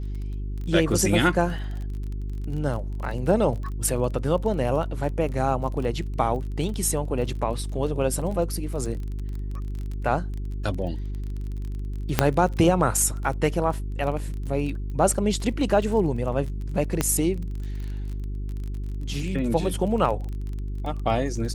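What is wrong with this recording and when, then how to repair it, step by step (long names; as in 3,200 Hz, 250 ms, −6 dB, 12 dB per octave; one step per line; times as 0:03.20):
surface crackle 26 per second −32 dBFS
mains hum 50 Hz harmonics 8 −30 dBFS
0:12.19: click −2 dBFS
0:17.01: click −8 dBFS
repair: click removal
hum removal 50 Hz, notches 8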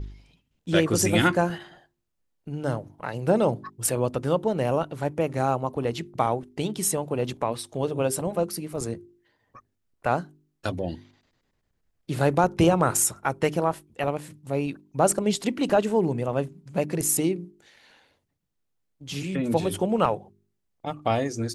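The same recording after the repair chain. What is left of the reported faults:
0:17.01: click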